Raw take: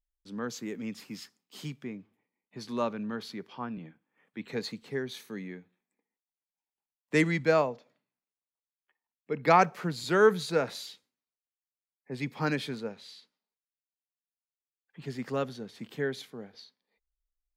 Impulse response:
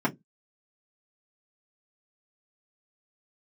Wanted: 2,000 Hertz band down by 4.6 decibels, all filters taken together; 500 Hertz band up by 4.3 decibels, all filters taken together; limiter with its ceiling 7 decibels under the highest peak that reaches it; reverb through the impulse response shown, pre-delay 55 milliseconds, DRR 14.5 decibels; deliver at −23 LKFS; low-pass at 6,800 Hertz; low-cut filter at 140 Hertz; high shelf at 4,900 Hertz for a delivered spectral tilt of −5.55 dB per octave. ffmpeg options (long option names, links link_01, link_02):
-filter_complex "[0:a]highpass=140,lowpass=6800,equalizer=frequency=500:width_type=o:gain=5.5,equalizer=frequency=2000:width_type=o:gain=-5.5,highshelf=frequency=4900:gain=-7,alimiter=limit=-15.5dB:level=0:latency=1,asplit=2[link_01][link_02];[1:a]atrim=start_sample=2205,adelay=55[link_03];[link_02][link_03]afir=irnorm=-1:irlink=0,volume=-26dB[link_04];[link_01][link_04]amix=inputs=2:normalize=0,volume=8dB"